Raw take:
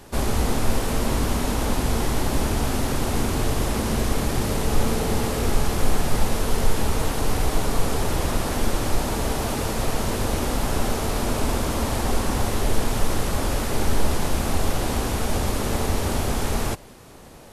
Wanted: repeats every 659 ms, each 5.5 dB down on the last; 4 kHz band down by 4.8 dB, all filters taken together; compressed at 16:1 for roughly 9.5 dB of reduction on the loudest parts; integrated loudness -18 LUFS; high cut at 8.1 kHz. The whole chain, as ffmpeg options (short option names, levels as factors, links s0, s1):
-af "lowpass=8100,equalizer=f=4000:t=o:g=-6,acompressor=threshold=0.0891:ratio=16,aecho=1:1:659|1318|1977|2636|3295|3954|4613:0.531|0.281|0.149|0.079|0.0419|0.0222|0.0118,volume=3.35"